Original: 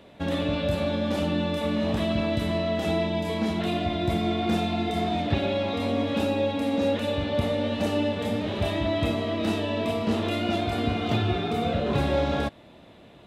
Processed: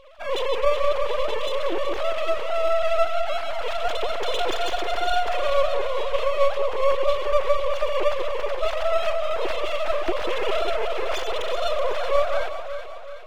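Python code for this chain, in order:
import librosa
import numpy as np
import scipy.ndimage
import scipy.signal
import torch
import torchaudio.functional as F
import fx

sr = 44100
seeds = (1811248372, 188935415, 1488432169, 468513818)

p1 = fx.sine_speech(x, sr)
p2 = fx.rider(p1, sr, range_db=10, speed_s=2.0)
p3 = p1 + (p2 * 10.0 ** (-2.0 / 20.0))
p4 = np.maximum(p3, 0.0)
y = fx.echo_alternate(p4, sr, ms=188, hz=1100.0, feedback_pct=70, wet_db=-6)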